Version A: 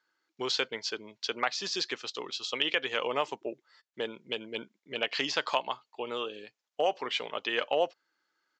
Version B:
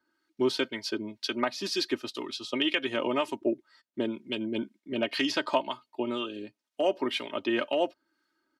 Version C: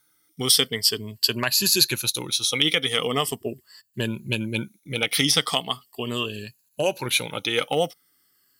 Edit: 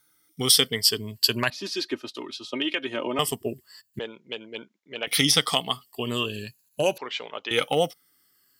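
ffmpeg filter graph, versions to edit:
-filter_complex "[0:a]asplit=2[s0][s1];[2:a]asplit=4[s2][s3][s4][s5];[s2]atrim=end=1.502[s6];[1:a]atrim=start=1.498:end=3.192[s7];[s3]atrim=start=3.188:end=3.992[s8];[s0]atrim=start=3.988:end=5.072[s9];[s4]atrim=start=5.068:end=6.982[s10];[s1]atrim=start=6.978:end=7.512[s11];[s5]atrim=start=7.508[s12];[s6][s7]acrossfade=d=0.004:c1=hsin:c2=hsin[s13];[s13][s8]acrossfade=d=0.004:c1=hsin:c2=hsin[s14];[s14][s9]acrossfade=d=0.004:c1=hsin:c2=hsin[s15];[s15][s10]acrossfade=d=0.004:c1=hsin:c2=hsin[s16];[s16][s11]acrossfade=d=0.004:c1=hsin:c2=hsin[s17];[s17][s12]acrossfade=d=0.004:c1=hsin:c2=hsin"

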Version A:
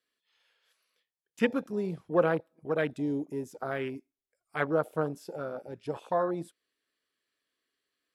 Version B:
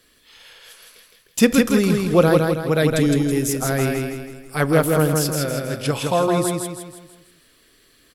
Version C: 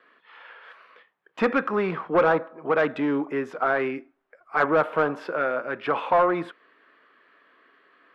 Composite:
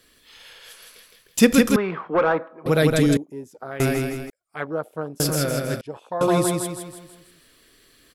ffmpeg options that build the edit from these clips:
-filter_complex "[0:a]asplit=3[s0][s1][s2];[1:a]asplit=5[s3][s4][s5][s6][s7];[s3]atrim=end=1.762[s8];[2:a]atrim=start=1.758:end=2.662[s9];[s4]atrim=start=2.658:end=3.172[s10];[s0]atrim=start=3.168:end=3.802[s11];[s5]atrim=start=3.798:end=4.302[s12];[s1]atrim=start=4.298:end=5.202[s13];[s6]atrim=start=5.198:end=5.812[s14];[s2]atrim=start=5.808:end=6.212[s15];[s7]atrim=start=6.208[s16];[s8][s9]acrossfade=d=0.004:c1=hsin:c2=hsin[s17];[s17][s10]acrossfade=d=0.004:c1=hsin:c2=hsin[s18];[s18][s11]acrossfade=d=0.004:c1=hsin:c2=hsin[s19];[s19][s12]acrossfade=d=0.004:c1=hsin:c2=hsin[s20];[s20][s13]acrossfade=d=0.004:c1=hsin:c2=hsin[s21];[s21][s14]acrossfade=d=0.004:c1=hsin:c2=hsin[s22];[s22][s15]acrossfade=d=0.004:c1=hsin:c2=hsin[s23];[s23][s16]acrossfade=d=0.004:c1=hsin:c2=hsin"

